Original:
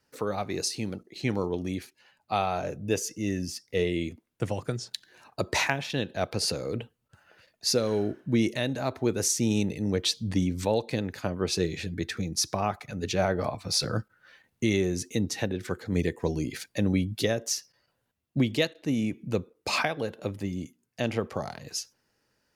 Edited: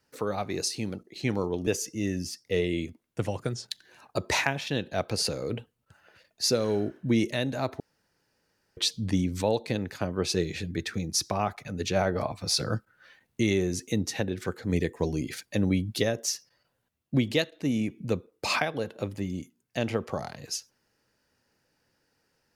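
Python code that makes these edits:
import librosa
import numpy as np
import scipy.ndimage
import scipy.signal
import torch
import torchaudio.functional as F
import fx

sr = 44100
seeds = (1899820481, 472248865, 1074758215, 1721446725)

y = fx.edit(x, sr, fx.cut(start_s=1.67, length_s=1.23),
    fx.room_tone_fill(start_s=9.03, length_s=0.97), tone=tone)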